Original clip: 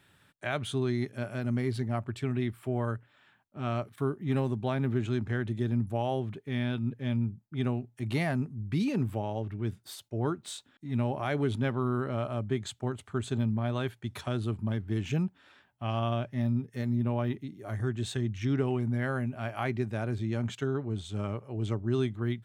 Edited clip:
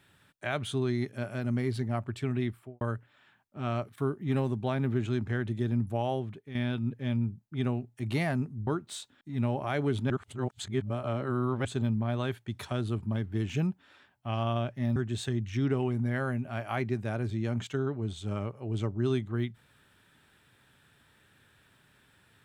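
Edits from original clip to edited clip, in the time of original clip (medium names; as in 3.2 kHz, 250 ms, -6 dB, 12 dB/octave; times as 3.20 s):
2.46–2.81 s: studio fade out
6.10–6.55 s: fade out, to -9.5 dB
8.67–10.23 s: delete
11.66–13.21 s: reverse
16.52–17.84 s: delete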